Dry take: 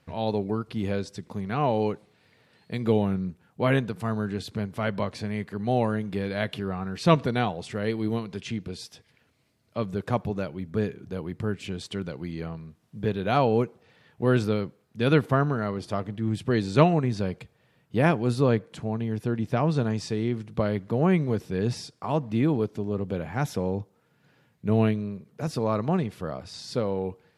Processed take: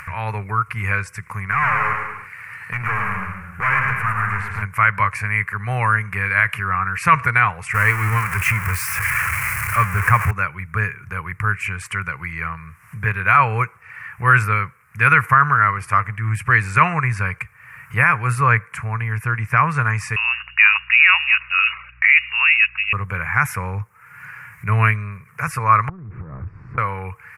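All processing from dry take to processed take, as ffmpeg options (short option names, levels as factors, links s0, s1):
-filter_complex "[0:a]asettb=1/sr,asplit=3[s0][s1][s2];[s0]atrim=end=1.514[s3];[s1]atrim=start=1.51:end=4.62,asetpts=PTS-STARTPTS,afade=t=in:d=0.004:c=qsin,afade=t=out:st=3.106:d=0.004:c=qsin,volume=28.2,asoftclip=hard,volume=0.0355,acrossover=split=3500[s4][s5];[s5]acompressor=threshold=0.00158:ratio=4:attack=1:release=60[s6];[s4][s6]amix=inputs=2:normalize=0,aecho=1:1:110|192.5|254.4|300.8|335.6:0.631|0.398|0.251|0.158|0.1,atrim=end_sample=137151[s7];[s2]atrim=start=4.616[s8];[s3][s7]acrossfade=d=0.004:c1=hsin:c2=qsin[s9];[s9][s8]acrossfade=d=0.004:c1=qsin:c2=hsin,asettb=1/sr,asplit=3[s10][s11][s12];[s10]atrim=end=7.744[s13];[s11]atrim=start=7.74:end=10.31,asetpts=PTS-STARTPTS,afade=t=in:d=0.004:c=qsin,afade=t=out:st=2.566:d=0.004:c=qsin,aeval=exprs='val(0)+0.5*0.0282*sgn(val(0))':c=same,equalizer=f=84:t=o:w=0.96:g=6[s14];[s12]atrim=start=10.306[s15];[s13][s14]acrossfade=d=0.004:c1=hsin:c2=qsin[s16];[s16][s15]acrossfade=d=0.004:c1=qsin:c2=hsin,asettb=1/sr,asplit=3[s17][s18][s19];[s17]atrim=end=20.164[s20];[s18]atrim=start=20.16:end=22.93,asetpts=PTS-STARTPTS,afade=t=in:d=0.004:c=qsin,afade=t=out:st=2.766:d=0.004:c=qsin,equalizer=f=62:w=0.33:g=-14.5,lowpass=f=2600:t=q:w=0.5098,lowpass=f=2600:t=q:w=0.6013,lowpass=f=2600:t=q:w=0.9,lowpass=f=2600:t=q:w=2.563,afreqshift=-3000,aeval=exprs='val(0)+0.00112*(sin(2*PI*60*n/s)+sin(2*PI*2*60*n/s)/2+sin(2*PI*3*60*n/s)/3+sin(2*PI*4*60*n/s)/4+sin(2*PI*5*60*n/s)/5)':c=same[s21];[s19]atrim=start=22.926[s22];[s20][s21]acrossfade=d=0.004:c1=hsin:c2=qsin[s23];[s23][s22]acrossfade=d=0.004:c1=qsin:c2=hsin,asettb=1/sr,asplit=3[s24][s25][s26];[s24]atrim=end=25.894[s27];[s25]atrim=start=25.89:end=26.78,asetpts=PTS-STARTPTS,afade=t=in:d=0.004:c=qsin,afade=t=out:st=0.886:d=0.004:c=qsin,aeval=exprs='val(0)+0.5*0.0224*sgn(val(0))':c=same,lowpass=f=310:t=q:w=3,acompressor=threshold=0.0282:ratio=10:attack=3.2:release=140:knee=1:detection=peak[s28];[s26]atrim=start=26.776[s29];[s27][s28]acrossfade=d=0.004:c1=hsin:c2=qsin[s30];[s30][s29]acrossfade=d=0.004:c1=qsin:c2=hsin,firequalizer=gain_entry='entry(110,0);entry(250,-25);entry(460,-15);entry(670,-14);entry(1100,11);entry(2300,13);entry(3500,-22);entry(5400,-8);entry(9400,5)':delay=0.05:min_phase=1,acompressor=mode=upward:threshold=0.0158:ratio=2.5,alimiter=level_in=3.35:limit=0.891:release=50:level=0:latency=1,volume=0.891"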